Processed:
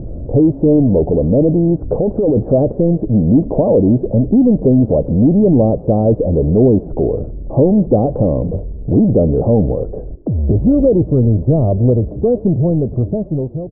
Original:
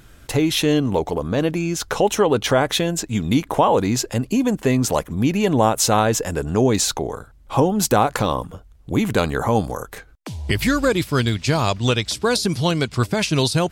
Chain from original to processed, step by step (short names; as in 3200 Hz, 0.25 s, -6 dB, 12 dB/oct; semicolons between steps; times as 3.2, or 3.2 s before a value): ending faded out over 1.68 s; 1.9–2.53 negative-ratio compressor -21 dBFS, ratio -1; power-law curve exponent 0.5; elliptic low-pass 610 Hz, stop band 80 dB; on a send: frequency-shifting echo 0.117 s, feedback 61%, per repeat -41 Hz, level -21.5 dB; on the sum: gain +3 dB